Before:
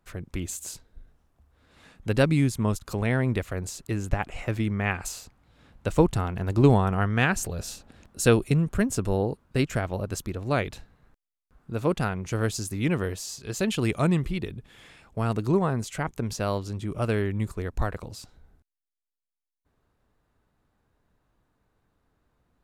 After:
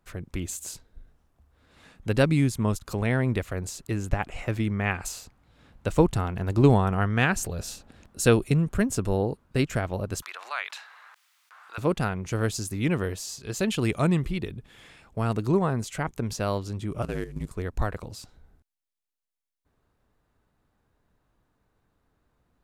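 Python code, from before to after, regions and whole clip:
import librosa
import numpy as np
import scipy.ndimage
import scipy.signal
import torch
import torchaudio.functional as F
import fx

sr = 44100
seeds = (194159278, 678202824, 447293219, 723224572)

y = fx.chain(x, sr, fx.highpass(hz=1000.0, slope=24),
    fx.high_shelf(hz=5800.0, db=-12.0),
    fx.env_flatten(amount_pct=50), at=(10.22, 11.78))
y = fx.chain(y, sr, fx.cvsd(bps=64000),
    fx.ring_mod(carrier_hz=47.0),
    fx.level_steps(step_db=10), at=(17.02, 17.52))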